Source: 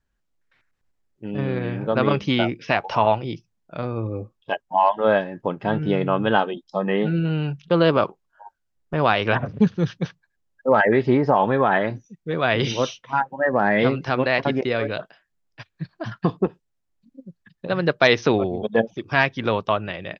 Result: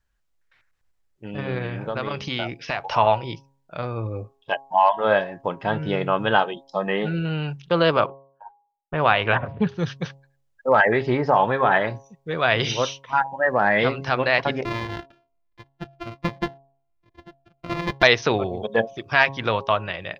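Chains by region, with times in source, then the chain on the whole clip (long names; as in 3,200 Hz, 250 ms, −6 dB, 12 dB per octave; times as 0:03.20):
0:01.66–0:02.81: downward compressor 4 to 1, threshold −22 dBFS + dynamic equaliser 4,600 Hz, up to +4 dB, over −51 dBFS, Q 3.3
0:08.00–0:09.69: low-pass filter 3,500 Hz 24 dB per octave + downward expander −45 dBFS
0:14.64–0:18.03: samples sorted by size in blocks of 128 samples + high-frequency loss of the air 300 metres + phaser whose notches keep moving one way falling 1.3 Hz
whole clip: parametric band 250 Hz −8.5 dB 1.8 octaves; hum removal 136.6 Hz, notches 8; level +2.5 dB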